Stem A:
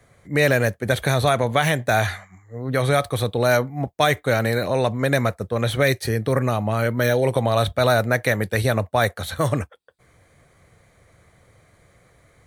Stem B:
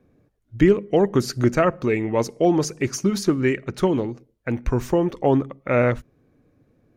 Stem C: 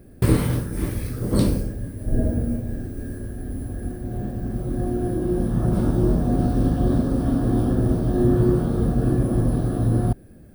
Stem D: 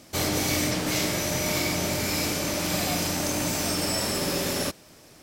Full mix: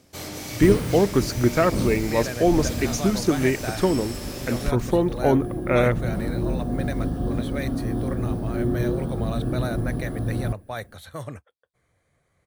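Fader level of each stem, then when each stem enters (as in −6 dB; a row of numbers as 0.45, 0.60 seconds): −13.5, −1.0, −6.0, −9.0 decibels; 1.75, 0.00, 0.40, 0.00 seconds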